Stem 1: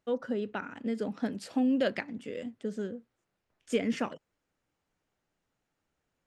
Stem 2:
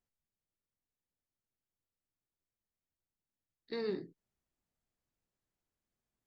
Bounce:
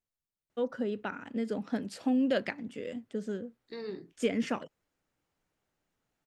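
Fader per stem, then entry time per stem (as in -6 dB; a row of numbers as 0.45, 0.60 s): -0.5, -3.0 dB; 0.50, 0.00 s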